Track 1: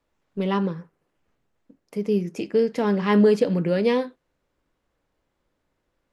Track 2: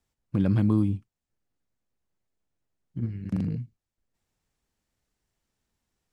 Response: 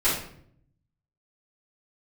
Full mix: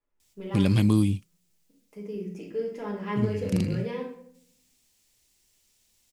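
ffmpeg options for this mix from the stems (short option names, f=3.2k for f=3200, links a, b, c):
-filter_complex "[0:a]equalizer=f=4.1k:t=o:w=0.31:g=-8,volume=-17.5dB,asplit=2[a][b];[b]volume=-9.5dB[c];[1:a]aexciter=amount=3.7:drive=7.3:freq=2.1k,adelay=200,volume=1.5dB[d];[2:a]atrim=start_sample=2205[e];[c][e]afir=irnorm=-1:irlink=0[f];[a][d][f]amix=inputs=3:normalize=0"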